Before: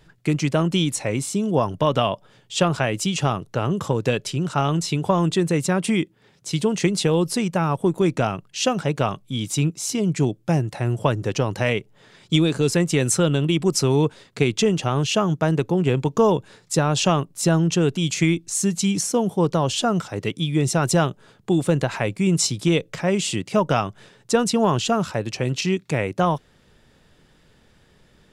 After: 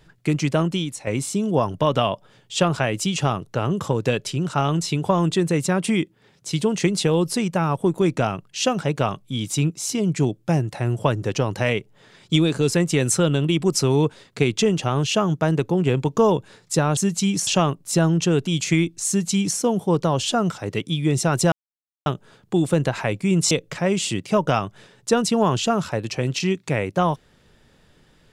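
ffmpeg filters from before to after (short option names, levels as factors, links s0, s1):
-filter_complex "[0:a]asplit=6[s0][s1][s2][s3][s4][s5];[s0]atrim=end=1.07,asetpts=PTS-STARTPTS,afade=t=out:st=0.62:d=0.45:c=qua:silence=0.375837[s6];[s1]atrim=start=1.07:end=16.972,asetpts=PTS-STARTPTS,afade=t=in:d=0.004:c=hsin:silence=0.375837[s7];[s2]atrim=start=18.578:end=19.082[s8];[s3]atrim=start=16.968:end=21.02,asetpts=PTS-STARTPTS,afade=t=out:st=4.048:d=0.004:c=hsin,apad=pad_dur=0.54[s9];[s4]atrim=start=21.02:end=22.472,asetpts=PTS-STARTPTS,afade=t=in:d=0.004:c=hsin[s10];[s5]atrim=start=22.728[s11];[s6][s7]concat=n=2:v=0:a=1[s12];[s12][s8]acrossfade=d=0.004:c1=hsin:c2=hsin[s13];[s9][s10]concat=n=2:v=0:a=1[s14];[s13][s14]acrossfade=d=0.004:c1=hsin:c2=hsin[s15];[s15][s11]acrossfade=d=0.004:c1=hsin:c2=hsin"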